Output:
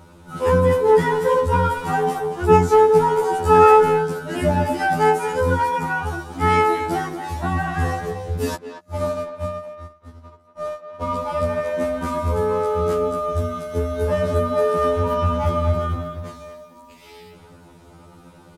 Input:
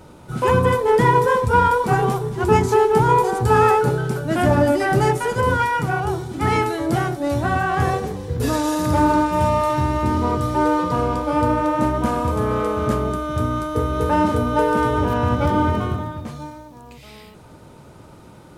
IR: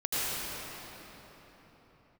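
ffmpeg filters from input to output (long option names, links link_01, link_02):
-filter_complex "[0:a]asettb=1/sr,asplit=3[link_01][link_02][link_03];[link_01]atrim=end=8.554[link_04];[link_02]atrim=start=8.55:end=11.02,asetpts=PTS-STARTPTS,afade=type=in:duration=0.004:curve=qsin,afade=type=out:start_time=2.466:duration=0.004:curve=qsin,agate=range=-39dB:threshold=-15dB:ratio=16:detection=peak[link_05];[link_03]atrim=start=11.016[link_06];[link_04][link_05]acrossfade=duration=0.004:curve1=hsin:curve2=qsin[link_07];[link_07][link_06]acrossfade=duration=0.004:curve1=qsin:curve2=hsin,asplit=2[link_08][link_09];[link_09]adelay=230,highpass=300,lowpass=3400,asoftclip=type=hard:threshold=-12dB,volume=-9dB[link_10];[link_08][link_10]amix=inputs=2:normalize=0,afftfilt=real='re*2*eq(mod(b,4),0)':imag='im*2*eq(mod(b,4),0)':win_size=2048:overlap=0.75"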